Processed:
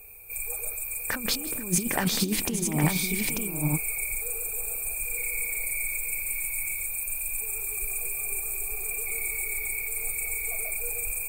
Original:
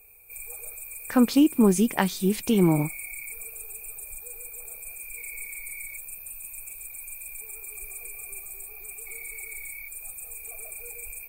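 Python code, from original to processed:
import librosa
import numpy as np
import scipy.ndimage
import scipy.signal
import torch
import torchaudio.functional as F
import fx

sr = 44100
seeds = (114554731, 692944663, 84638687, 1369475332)

y = fx.low_shelf(x, sr, hz=250.0, db=2.5)
y = fx.over_compress(y, sr, threshold_db=-25.0, ratio=-0.5)
y = fx.echo_multitap(y, sr, ms=(159, 477, 810, 891), db=(-20.0, -19.5, -8.0, -4.0))
y = y * 10.0 ** (1.0 / 20.0)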